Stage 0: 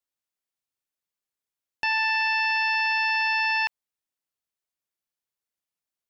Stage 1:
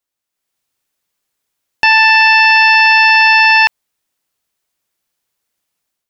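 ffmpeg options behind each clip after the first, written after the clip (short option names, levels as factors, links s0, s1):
-af "dynaudnorm=f=280:g=3:m=2.66,volume=2.37"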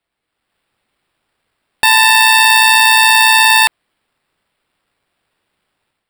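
-af "acrusher=samples=7:mix=1:aa=0.000001,alimiter=level_in=1.68:limit=0.891:release=50:level=0:latency=1,volume=0.891"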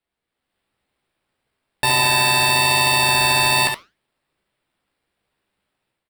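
-filter_complex "[0:a]flanger=delay=1.5:depth=8.6:regen=-89:speed=1:shape=triangular,asplit=2[s0][s1];[s1]acrusher=samples=27:mix=1:aa=0.000001,volume=0.355[s2];[s0][s2]amix=inputs=2:normalize=0,aecho=1:1:15|71:0.473|0.501,volume=0.596"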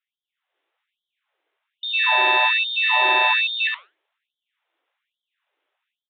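-af "aresample=8000,aresample=44100,afftfilt=real='re*gte(b*sr/1024,270*pow(3100/270,0.5+0.5*sin(2*PI*1.2*pts/sr)))':imag='im*gte(b*sr/1024,270*pow(3100/270,0.5+0.5*sin(2*PI*1.2*pts/sr)))':win_size=1024:overlap=0.75,volume=1.12"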